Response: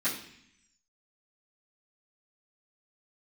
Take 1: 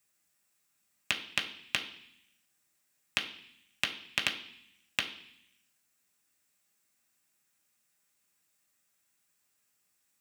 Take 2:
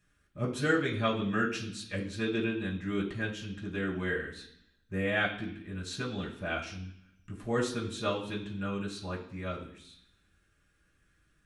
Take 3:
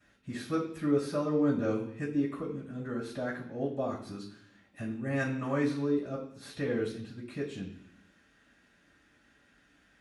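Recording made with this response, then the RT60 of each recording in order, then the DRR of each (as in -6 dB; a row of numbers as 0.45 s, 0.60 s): 3; 0.65 s, 0.65 s, 0.65 s; 1.0 dB, -5.0 dB, -14.5 dB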